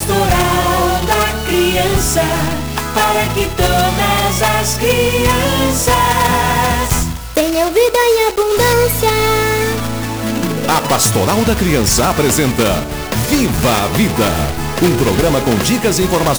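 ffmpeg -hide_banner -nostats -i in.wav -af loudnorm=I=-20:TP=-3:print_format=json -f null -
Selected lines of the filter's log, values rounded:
"input_i" : "-13.7",
"input_tp" : "-0.9",
"input_lra" : "1.1",
"input_thresh" : "-23.7",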